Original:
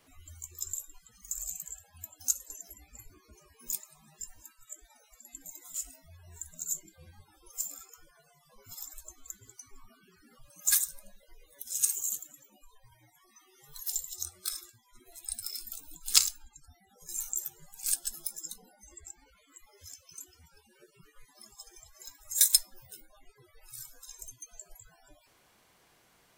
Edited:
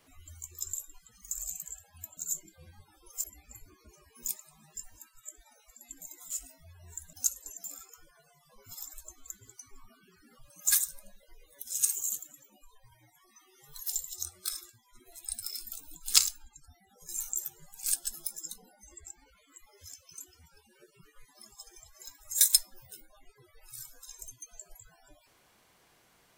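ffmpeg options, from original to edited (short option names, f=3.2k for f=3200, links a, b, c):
-filter_complex "[0:a]asplit=5[a][b][c][d][e];[a]atrim=end=2.172[f];[b]atrim=start=6.568:end=7.642[g];[c]atrim=start=2.678:end=6.572[h];[d]atrim=start=2.168:end=2.682[i];[e]atrim=start=7.638[j];[f][g]acrossfade=d=0.004:c1=hsin:c2=hsin[k];[k][h]acrossfade=d=0.004:c1=hsin:c2=hsin[l];[l][i]acrossfade=d=0.004:c1=hsin:c2=hsin[m];[m][j]acrossfade=d=0.004:c1=hsin:c2=hsin"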